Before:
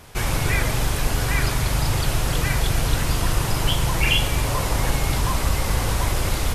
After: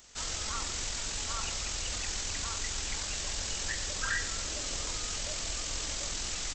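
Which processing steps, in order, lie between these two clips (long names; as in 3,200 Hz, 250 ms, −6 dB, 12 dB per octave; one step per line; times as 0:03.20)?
pitch shifter −9.5 semitones
first-order pre-emphasis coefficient 0.9
level +1 dB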